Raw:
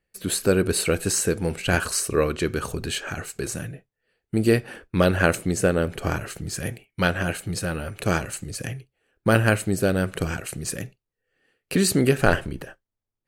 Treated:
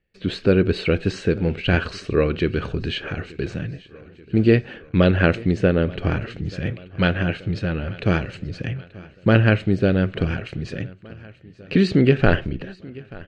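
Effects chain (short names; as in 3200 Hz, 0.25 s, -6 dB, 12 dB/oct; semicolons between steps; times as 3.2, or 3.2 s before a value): LPF 3500 Hz 24 dB/oct; bell 990 Hz -8.5 dB 1.8 oct; on a send: feedback echo 0.883 s, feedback 58%, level -21.5 dB; on the sum: gain +5.5 dB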